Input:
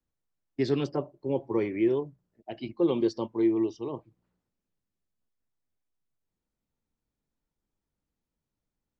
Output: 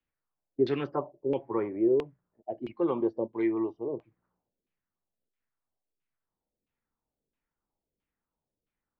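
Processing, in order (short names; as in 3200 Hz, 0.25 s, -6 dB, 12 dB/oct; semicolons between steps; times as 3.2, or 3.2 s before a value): low shelf 400 Hz -6.5 dB; LFO low-pass saw down 1.5 Hz 380–2900 Hz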